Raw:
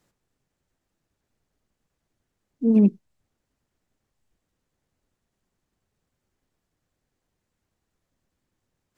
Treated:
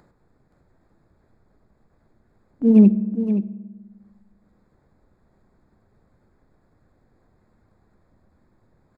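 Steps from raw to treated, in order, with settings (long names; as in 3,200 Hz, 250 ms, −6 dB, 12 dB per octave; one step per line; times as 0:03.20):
adaptive Wiener filter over 15 samples
noise gate with hold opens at −41 dBFS
upward compression, threshold −38 dBFS
single-tap delay 523 ms −9.5 dB
on a send at −13.5 dB: convolution reverb RT60 1.4 s, pre-delay 5 ms
on the sum: level +3.5 dB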